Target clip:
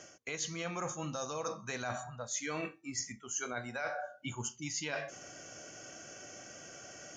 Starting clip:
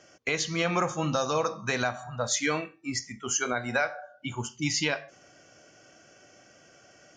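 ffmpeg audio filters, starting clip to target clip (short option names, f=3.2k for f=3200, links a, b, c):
-af "equalizer=f=6.6k:t=o:w=0.27:g=8.5,areverse,acompressor=threshold=-40dB:ratio=10,areverse,volume=4.5dB"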